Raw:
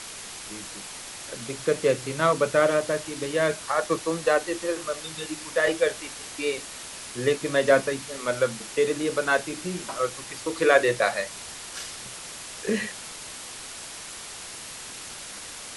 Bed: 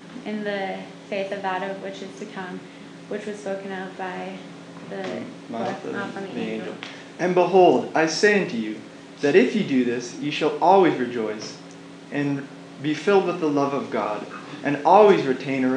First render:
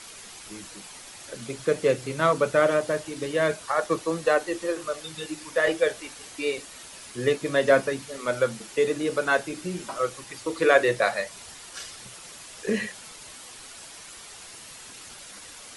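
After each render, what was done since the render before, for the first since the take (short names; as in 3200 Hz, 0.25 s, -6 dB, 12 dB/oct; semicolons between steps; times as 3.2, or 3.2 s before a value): denoiser 7 dB, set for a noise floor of -40 dBFS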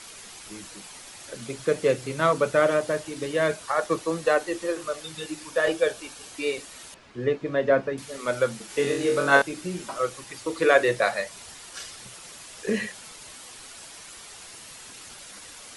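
5.47–6.33 notch 2000 Hz, Q 6.5; 6.94–7.98 tape spacing loss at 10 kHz 28 dB; 8.67–9.42 flutter echo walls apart 3.7 m, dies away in 0.45 s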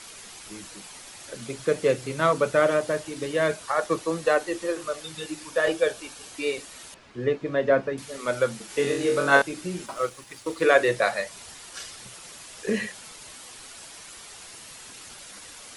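9.86–10.62 G.711 law mismatch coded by A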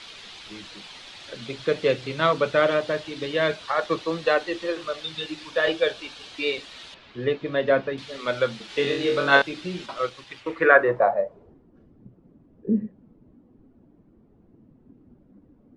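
low-pass sweep 3700 Hz -> 260 Hz, 10.27–11.68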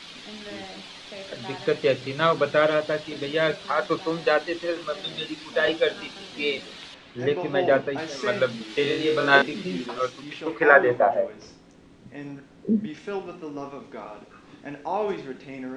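add bed -13.5 dB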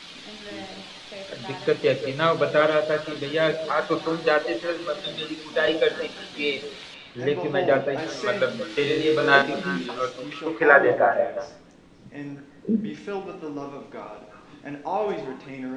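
delay with a stepping band-pass 0.177 s, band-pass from 500 Hz, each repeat 1.4 oct, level -9.5 dB; shoebox room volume 300 m³, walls furnished, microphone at 0.49 m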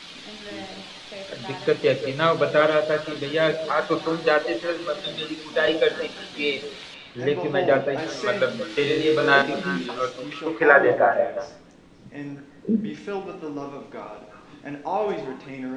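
gain +1 dB; limiter -3 dBFS, peak gain reduction 3 dB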